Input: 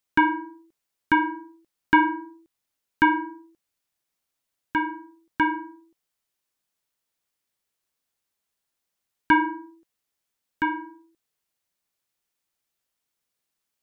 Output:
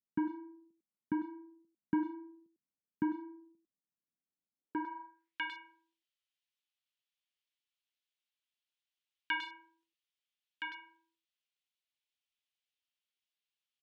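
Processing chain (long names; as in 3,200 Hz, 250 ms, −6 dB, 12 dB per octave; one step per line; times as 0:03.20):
far-end echo of a speakerphone 100 ms, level −7 dB
band-pass filter sweep 200 Hz → 3,100 Hz, 0:04.50–0:05.41
level −2.5 dB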